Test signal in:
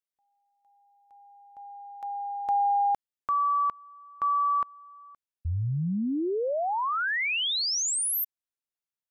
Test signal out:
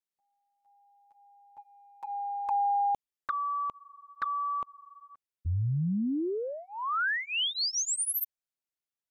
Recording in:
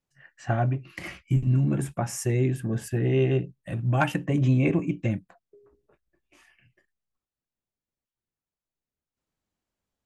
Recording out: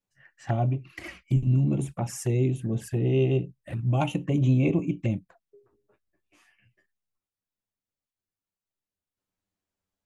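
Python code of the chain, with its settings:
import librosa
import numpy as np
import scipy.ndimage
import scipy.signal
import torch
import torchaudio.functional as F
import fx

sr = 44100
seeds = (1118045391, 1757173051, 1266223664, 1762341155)

y = fx.env_flanger(x, sr, rest_ms=10.4, full_db=-23.5)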